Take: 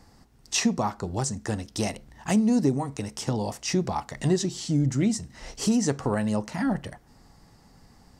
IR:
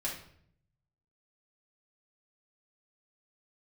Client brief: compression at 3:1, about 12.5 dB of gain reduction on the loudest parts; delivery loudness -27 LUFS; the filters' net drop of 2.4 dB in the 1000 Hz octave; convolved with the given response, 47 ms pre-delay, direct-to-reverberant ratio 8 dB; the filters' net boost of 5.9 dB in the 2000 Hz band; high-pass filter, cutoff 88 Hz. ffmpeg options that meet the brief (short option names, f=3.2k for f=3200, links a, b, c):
-filter_complex "[0:a]highpass=88,equalizer=f=1k:t=o:g=-5,equalizer=f=2k:t=o:g=8.5,acompressor=threshold=-36dB:ratio=3,asplit=2[a][b];[1:a]atrim=start_sample=2205,adelay=47[c];[b][c]afir=irnorm=-1:irlink=0,volume=-11dB[d];[a][d]amix=inputs=2:normalize=0,volume=9.5dB"